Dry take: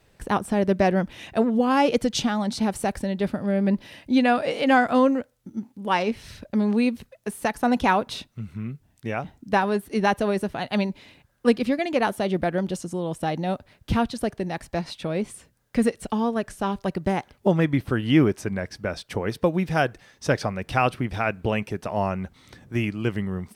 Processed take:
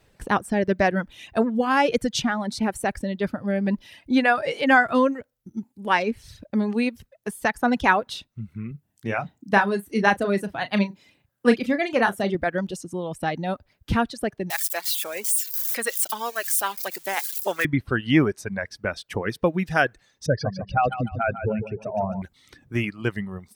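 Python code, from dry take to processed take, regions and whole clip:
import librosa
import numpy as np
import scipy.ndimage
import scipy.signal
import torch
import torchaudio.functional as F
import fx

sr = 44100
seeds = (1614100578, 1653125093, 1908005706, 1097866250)

y = fx.chain(x, sr, fx.highpass(hz=110.0, slope=12),
    fx.low_shelf(hz=210.0, db=4.0),
    fx.doubler(ms=35.0, db=-8.0), at=(8.71, 12.35))
y = fx.chain(y, sr, fx.crossing_spikes(level_db=-26.0),
    fx.highpass(hz=480.0, slope=12),
    fx.tilt_eq(slope=2.5), at=(14.5, 17.65))
y = fx.chain(y, sr, fx.spec_expand(power=2.4),
    fx.echo_feedback(ms=148, feedback_pct=49, wet_db=-6), at=(20.26, 22.22))
y = fx.dereverb_blind(y, sr, rt60_s=1.2)
y = fx.dynamic_eq(y, sr, hz=1700.0, q=1.8, threshold_db=-42.0, ratio=4.0, max_db=7)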